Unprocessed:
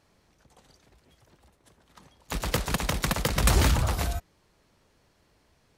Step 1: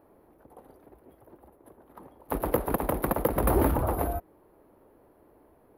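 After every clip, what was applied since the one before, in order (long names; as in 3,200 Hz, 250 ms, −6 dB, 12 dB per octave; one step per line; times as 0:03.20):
drawn EQ curve 170 Hz 0 dB, 310 Hz +13 dB, 900 Hz +8 dB, 7,500 Hz −28 dB, 11,000 Hz +7 dB
in parallel at +2.5 dB: downward compressor, threshold −29 dBFS, peak gain reduction 15 dB
on the sum: level −7.5 dB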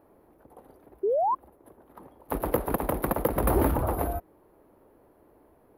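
sound drawn into the spectrogram rise, 0:01.03–0:01.35, 370–1,100 Hz −24 dBFS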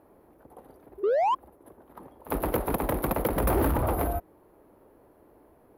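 echo ahead of the sound 54 ms −18 dB
soft clipping −22 dBFS, distortion −12 dB
harmonic generator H 7 −33 dB, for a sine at −22 dBFS
level +3 dB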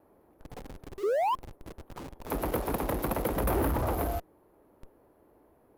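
in parallel at −9 dB: comparator with hysteresis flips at −46.5 dBFS
on the sum: pitch vibrato 0.63 Hz 9.3 cents
level −4.5 dB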